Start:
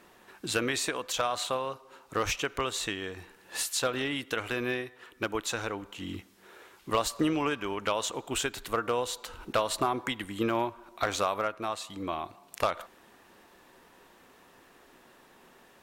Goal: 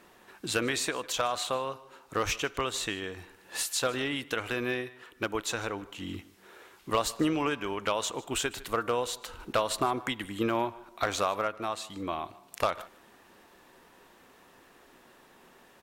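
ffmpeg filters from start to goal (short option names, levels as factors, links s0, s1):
-af "aecho=1:1:152:0.0891"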